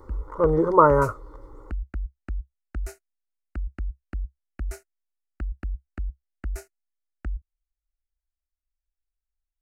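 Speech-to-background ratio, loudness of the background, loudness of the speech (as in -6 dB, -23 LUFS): 17.0 dB, -37.0 LUFS, -20.0 LUFS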